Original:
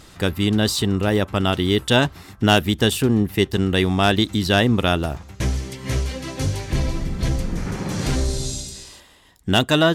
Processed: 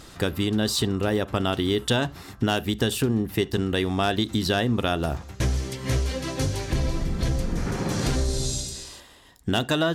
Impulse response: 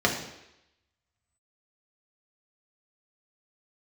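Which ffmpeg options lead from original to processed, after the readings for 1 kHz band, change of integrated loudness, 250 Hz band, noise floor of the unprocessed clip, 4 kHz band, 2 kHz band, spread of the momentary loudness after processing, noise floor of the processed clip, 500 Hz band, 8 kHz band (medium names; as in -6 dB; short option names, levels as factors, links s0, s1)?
-5.5 dB, -5.0 dB, -5.0 dB, -47 dBFS, -5.5 dB, -6.5 dB, 6 LU, -46 dBFS, -4.5 dB, -2.0 dB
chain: -filter_complex "[0:a]acompressor=threshold=0.1:ratio=6,asplit=2[s0][s1];[1:a]atrim=start_sample=2205,atrim=end_sample=3969[s2];[s1][s2]afir=irnorm=-1:irlink=0,volume=0.0422[s3];[s0][s3]amix=inputs=2:normalize=0"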